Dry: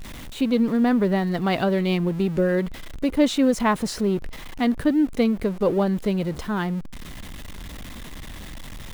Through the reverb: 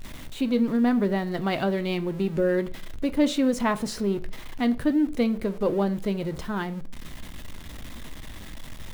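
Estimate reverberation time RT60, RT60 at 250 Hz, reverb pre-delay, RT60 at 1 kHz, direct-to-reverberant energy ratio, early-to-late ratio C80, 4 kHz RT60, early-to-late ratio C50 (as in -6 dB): 0.45 s, 0.50 s, 3 ms, 0.35 s, 11.0 dB, 23.5 dB, 0.35 s, 19.0 dB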